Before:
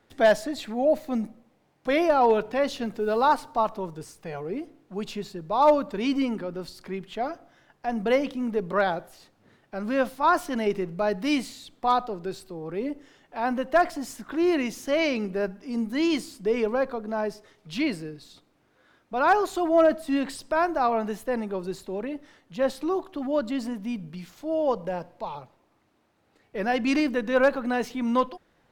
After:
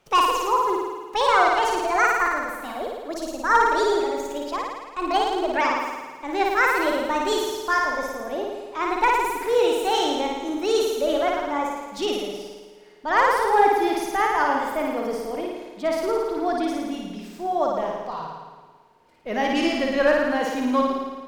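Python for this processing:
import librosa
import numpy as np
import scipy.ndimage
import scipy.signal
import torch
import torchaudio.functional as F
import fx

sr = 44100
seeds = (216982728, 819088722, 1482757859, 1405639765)

y = fx.speed_glide(x, sr, from_pct=165, to_pct=105)
y = fx.room_flutter(y, sr, wall_m=9.5, rt60_s=1.3)
y = fx.rev_spring(y, sr, rt60_s=3.0, pass_ms=(53,), chirp_ms=75, drr_db=19.5)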